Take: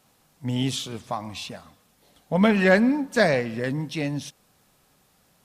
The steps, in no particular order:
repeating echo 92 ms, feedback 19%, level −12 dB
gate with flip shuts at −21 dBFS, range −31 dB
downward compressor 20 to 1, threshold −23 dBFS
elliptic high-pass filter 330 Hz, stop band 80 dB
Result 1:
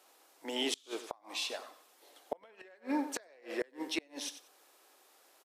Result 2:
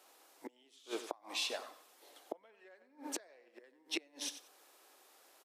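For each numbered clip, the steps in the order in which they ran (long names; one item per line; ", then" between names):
elliptic high-pass filter, then downward compressor, then repeating echo, then gate with flip
repeating echo, then downward compressor, then gate with flip, then elliptic high-pass filter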